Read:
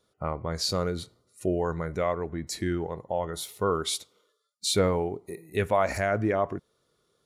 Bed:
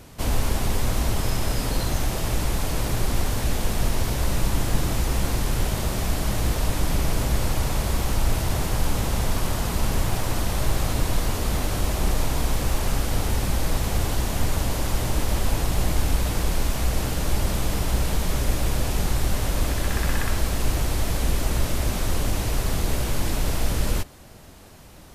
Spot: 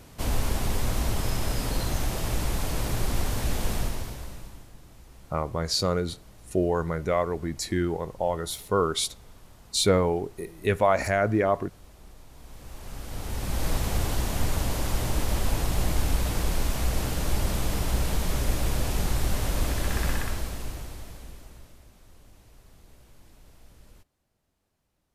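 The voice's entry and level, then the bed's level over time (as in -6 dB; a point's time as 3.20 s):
5.10 s, +2.5 dB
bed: 3.75 s -3.5 dB
4.74 s -27 dB
12.26 s -27 dB
13.67 s -3 dB
20.08 s -3 dB
21.90 s -30 dB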